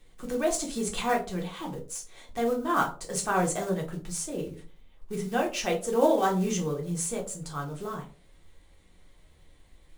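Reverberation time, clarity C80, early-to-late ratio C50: 0.40 s, 17.0 dB, 11.5 dB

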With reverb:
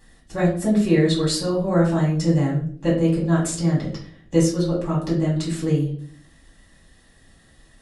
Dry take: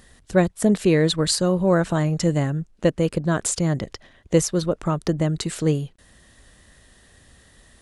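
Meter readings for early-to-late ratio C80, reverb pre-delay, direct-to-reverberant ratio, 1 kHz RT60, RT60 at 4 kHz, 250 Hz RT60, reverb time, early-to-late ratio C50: 11.0 dB, 3 ms, −6.5 dB, 0.45 s, 0.40 s, 0.85 s, 0.55 s, 6.0 dB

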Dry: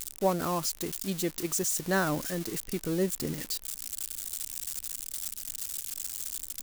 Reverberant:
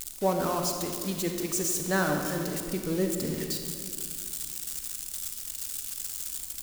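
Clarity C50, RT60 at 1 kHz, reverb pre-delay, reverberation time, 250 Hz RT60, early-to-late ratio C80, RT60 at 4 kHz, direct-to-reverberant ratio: 4.0 dB, 2.0 s, 37 ms, 2.2 s, 2.7 s, 5.5 dB, 1.4 s, 3.5 dB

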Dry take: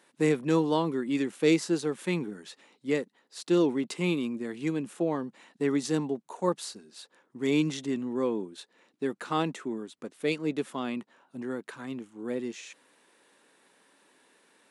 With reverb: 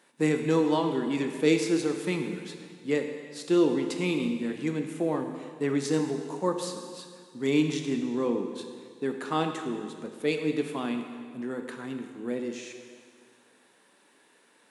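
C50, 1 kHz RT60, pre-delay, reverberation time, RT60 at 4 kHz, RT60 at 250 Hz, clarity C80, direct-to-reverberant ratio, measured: 6.0 dB, 1.9 s, 7 ms, 1.9 s, 1.8 s, 1.9 s, 7.5 dB, 4.5 dB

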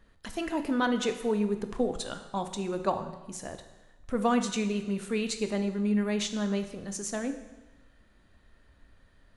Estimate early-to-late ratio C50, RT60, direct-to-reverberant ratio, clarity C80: 9.5 dB, 1.1 s, 7.0 dB, 11.5 dB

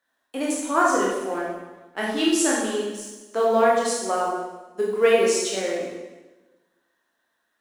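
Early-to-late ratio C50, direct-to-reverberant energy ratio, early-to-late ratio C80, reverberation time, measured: 0.0 dB, −5.0 dB, 3.0 dB, 1.2 s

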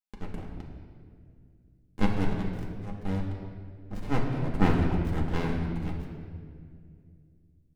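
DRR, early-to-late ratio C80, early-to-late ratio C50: −2.0 dB, 4.5 dB, 3.0 dB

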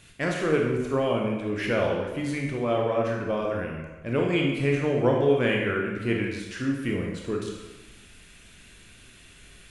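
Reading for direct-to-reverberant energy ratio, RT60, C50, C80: −1.0 dB, 1.2 s, 2.5 dB, 5.0 dB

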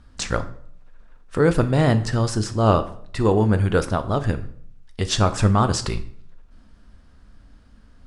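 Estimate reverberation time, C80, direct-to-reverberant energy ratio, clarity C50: 0.60 s, 18.0 dB, 9.5 dB, 14.5 dB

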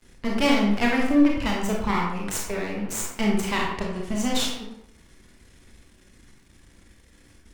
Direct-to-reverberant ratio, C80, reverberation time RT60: −2.0 dB, 5.5 dB, 0.75 s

